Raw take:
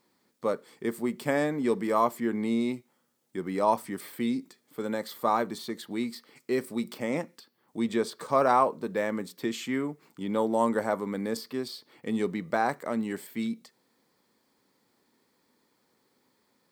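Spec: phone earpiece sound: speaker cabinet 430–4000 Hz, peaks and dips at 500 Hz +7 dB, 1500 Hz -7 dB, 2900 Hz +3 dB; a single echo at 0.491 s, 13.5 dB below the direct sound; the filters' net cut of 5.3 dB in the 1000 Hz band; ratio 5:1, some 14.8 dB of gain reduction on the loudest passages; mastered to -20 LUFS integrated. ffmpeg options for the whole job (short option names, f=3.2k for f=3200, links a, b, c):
-af "equalizer=f=1k:t=o:g=-6,acompressor=threshold=-39dB:ratio=5,highpass=430,equalizer=f=500:t=q:w=4:g=7,equalizer=f=1.5k:t=q:w=4:g=-7,equalizer=f=2.9k:t=q:w=4:g=3,lowpass=f=4k:w=0.5412,lowpass=f=4k:w=1.3066,aecho=1:1:491:0.211,volume=25dB"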